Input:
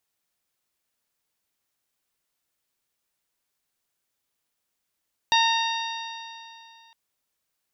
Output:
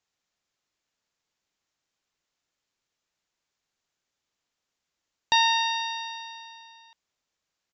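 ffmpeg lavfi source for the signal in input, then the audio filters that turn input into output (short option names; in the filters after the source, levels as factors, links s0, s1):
-f lavfi -i "aevalsrc='0.112*pow(10,-3*t/2.62)*sin(2*PI*911.05*t)+0.0562*pow(10,-3*t/2.62)*sin(2*PI*1828.35*t)+0.0596*pow(10,-3*t/2.62)*sin(2*PI*2758.11*t)+0.0891*pow(10,-3*t/2.62)*sin(2*PI*3706.37*t)+0.0335*pow(10,-3*t/2.62)*sin(2*PI*4678.98*t)+0.0237*pow(10,-3*t/2.62)*sin(2*PI*5681.55*t)':d=1.61:s=44100"
-af "aresample=16000,aresample=44100"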